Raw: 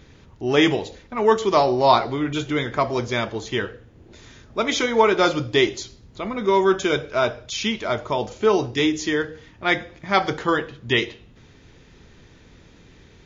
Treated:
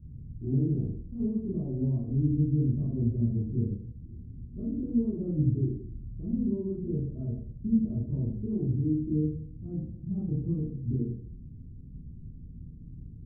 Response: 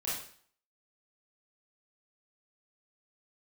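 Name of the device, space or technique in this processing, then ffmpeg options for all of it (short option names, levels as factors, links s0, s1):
club heard from the street: -filter_complex "[0:a]alimiter=limit=0.237:level=0:latency=1:release=163,lowpass=f=220:w=0.5412,lowpass=f=220:w=1.3066[s0];[1:a]atrim=start_sample=2205[s1];[s0][s1]afir=irnorm=-1:irlink=0,volume=1.41"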